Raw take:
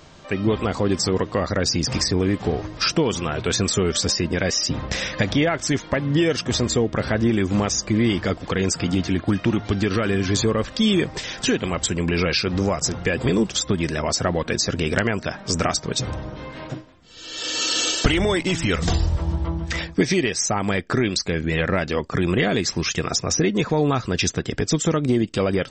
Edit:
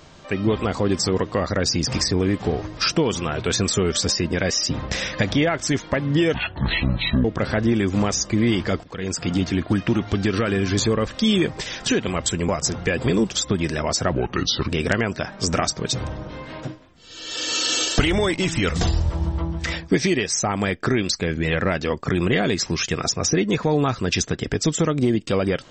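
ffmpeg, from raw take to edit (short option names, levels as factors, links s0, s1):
-filter_complex "[0:a]asplit=7[s0][s1][s2][s3][s4][s5][s6];[s0]atrim=end=6.344[s7];[s1]atrim=start=6.34:end=6.82,asetpts=PTS-STARTPTS,asetrate=23373,aresample=44100[s8];[s2]atrim=start=6.816:end=8.41,asetpts=PTS-STARTPTS,afade=t=out:st=1.59:d=0.004:c=hsin:silence=0.141254[s9];[s3]atrim=start=8.41:end=12.062,asetpts=PTS-STARTPTS,afade=t=in:d=0.5:silence=0.141254[s10];[s4]atrim=start=12.678:end=14.324[s11];[s5]atrim=start=14.32:end=14.75,asetpts=PTS-STARTPTS,asetrate=33957,aresample=44100,atrim=end_sample=24627,asetpts=PTS-STARTPTS[s12];[s6]atrim=start=14.746[s13];[s7][s8]acrossfade=d=0.004:c1=hsin:c2=hsin[s14];[s9][s10]concat=n=2:v=0:a=1[s15];[s14][s15]acrossfade=d=0.004:c1=hsin:c2=hsin[s16];[s16][s11]acrossfade=d=0.004:c1=hsin:c2=hsin[s17];[s17][s12]acrossfade=d=0.004:c1=hsin:c2=hsin[s18];[s18][s13]acrossfade=d=0.004:c1=hsin:c2=hsin"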